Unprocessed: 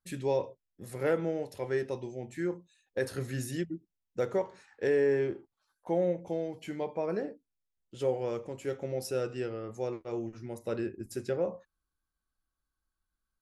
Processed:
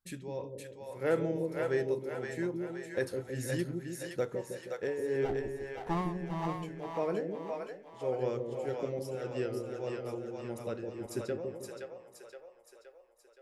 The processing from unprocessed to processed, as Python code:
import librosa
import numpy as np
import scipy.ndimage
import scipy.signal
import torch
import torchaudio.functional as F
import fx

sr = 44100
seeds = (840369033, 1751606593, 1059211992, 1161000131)

y = fx.lower_of_two(x, sr, delay_ms=1.0, at=(5.24, 6.46), fade=0.02)
y = y * (1.0 - 0.79 / 2.0 + 0.79 / 2.0 * np.cos(2.0 * np.pi * 1.7 * (np.arange(len(y)) / sr)))
y = fx.echo_split(y, sr, split_hz=510.0, low_ms=158, high_ms=520, feedback_pct=52, wet_db=-3)